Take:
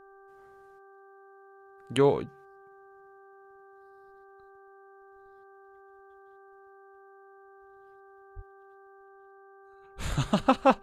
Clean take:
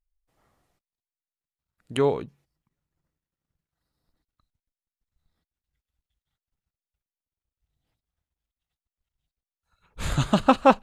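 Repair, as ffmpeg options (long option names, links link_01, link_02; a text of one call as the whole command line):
ffmpeg -i in.wav -filter_complex "[0:a]bandreject=frequency=391.7:width_type=h:width=4,bandreject=frequency=783.4:width_type=h:width=4,bandreject=frequency=1175.1:width_type=h:width=4,bandreject=frequency=1566.8:width_type=h:width=4,asplit=3[link_01][link_02][link_03];[link_01]afade=type=out:start_time=8.35:duration=0.02[link_04];[link_02]highpass=frequency=140:width=0.5412,highpass=frequency=140:width=1.3066,afade=type=in:start_time=8.35:duration=0.02,afade=type=out:start_time=8.47:duration=0.02[link_05];[link_03]afade=type=in:start_time=8.47:duration=0.02[link_06];[link_04][link_05][link_06]amix=inputs=3:normalize=0,asetnsamples=nb_out_samples=441:pad=0,asendcmd='9.04 volume volume 4.5dB',volume=0dB" out.wav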